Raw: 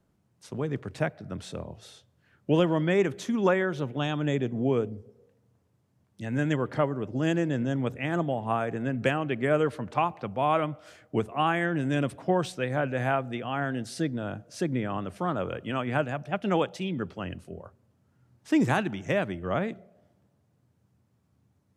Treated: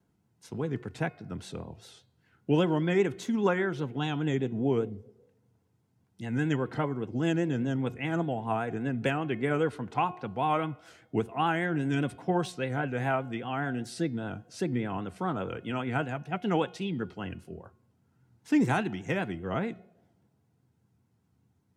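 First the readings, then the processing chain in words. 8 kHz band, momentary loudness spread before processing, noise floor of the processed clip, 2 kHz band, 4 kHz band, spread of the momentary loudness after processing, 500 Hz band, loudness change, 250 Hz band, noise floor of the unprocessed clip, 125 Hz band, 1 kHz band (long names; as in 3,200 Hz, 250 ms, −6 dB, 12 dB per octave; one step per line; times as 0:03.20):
−2.5 dB, 12 LU, −72 dBFS, −2.0 dB, −2.5 dB, 12 LU, −3.0 dB, −2.0 dB, −1.0 dB, −70 dBFS, −1.5 dB, −2.0 dB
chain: notch comb filter 590 Hz
pitch vibrato 5 Hz 79 cents
hum removal 360.1 Hz, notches 14
level −1 dB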